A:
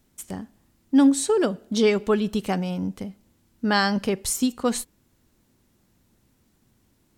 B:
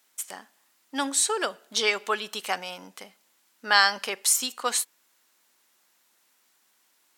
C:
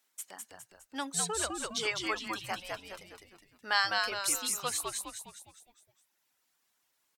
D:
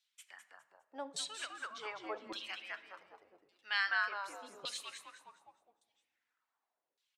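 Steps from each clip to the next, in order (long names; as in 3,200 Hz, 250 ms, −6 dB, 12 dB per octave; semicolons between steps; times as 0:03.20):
high-pass filter 1,000 Hz 12 dB per octave; level +5 dB
reverb reduction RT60 1.6 s; echo with shifted repeats 205 ms, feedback 46%, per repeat −100 Hz, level −3 dB; level −8.5 dB
auto-filter band-pass saw down 0.86 Hz 420–4,000 Hz; on a send at −13.5 dB: convolution reverb RT60 1.6 s, pre-delay 7 ms; on the sum: level +1 dB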